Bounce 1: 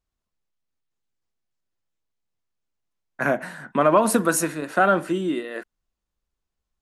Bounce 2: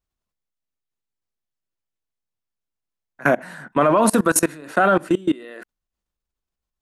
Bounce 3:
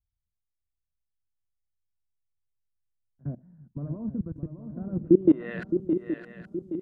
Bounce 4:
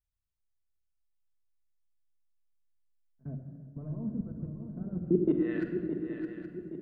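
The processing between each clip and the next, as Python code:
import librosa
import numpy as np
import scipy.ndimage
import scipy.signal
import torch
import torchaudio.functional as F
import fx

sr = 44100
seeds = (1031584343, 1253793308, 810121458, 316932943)

y1 = fx.level_steps(x, sr, step_db=23)
y1 = y1 * librosa.db_to_amplitude(8.0)
y2 = fx.filter_sweep_lowpass(y1, sr, from_hz=100.0, to_hz=10000.0, start_s=4.91, end_s=5.8, q=1.4)
y2 = fx.echo_swing(y2, sr, ms=821, ratio=3, feedback_pct=44, wet_db=-8.5)
y3 = fx.room_shoebox(y2, sr, seeds[0], volume_m3=3200.0, walls='mixed', distance_m=1.5)
y3 = y3 * librosa.db_to_amplitude(-6.5)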